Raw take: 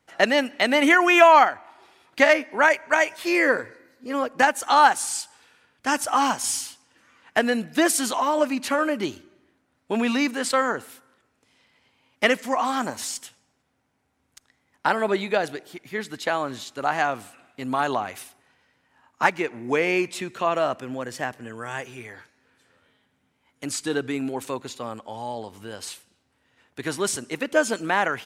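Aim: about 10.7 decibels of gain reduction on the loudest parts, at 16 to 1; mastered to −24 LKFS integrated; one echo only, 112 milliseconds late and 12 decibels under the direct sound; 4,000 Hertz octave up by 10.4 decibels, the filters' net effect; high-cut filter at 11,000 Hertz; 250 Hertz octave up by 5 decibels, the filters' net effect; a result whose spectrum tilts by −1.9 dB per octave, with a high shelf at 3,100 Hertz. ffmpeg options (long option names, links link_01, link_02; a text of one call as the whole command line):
ffmpeg -i in.wav -af "lowpass=11000,equalizer=frequency=250:width_type=o:gain=6,highshelf=frequency=3100:gain=8.5,equalizer=frequency=4000:width_type=o:gain=7.5,acompressor=threshold=-18dB:ratio=16,aecho=1:1:112:0.251" out.wav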